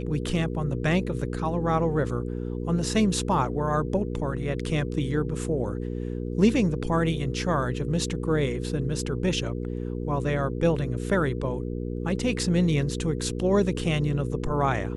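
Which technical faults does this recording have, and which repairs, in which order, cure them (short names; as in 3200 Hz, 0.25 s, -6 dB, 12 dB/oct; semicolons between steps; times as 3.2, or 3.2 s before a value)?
hum 60 Hz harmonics 8 -31 dBFS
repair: de-hum 60 Hz, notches 8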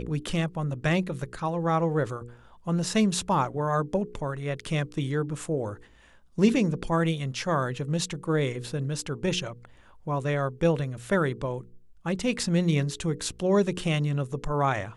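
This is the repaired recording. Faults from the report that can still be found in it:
none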